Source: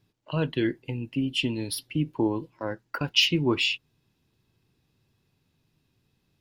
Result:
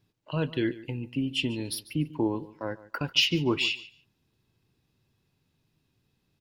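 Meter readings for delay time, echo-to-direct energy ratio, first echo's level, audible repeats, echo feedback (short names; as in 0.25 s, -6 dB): 0.145 s, -18.0 dB, -18.0 dB, 2, 16%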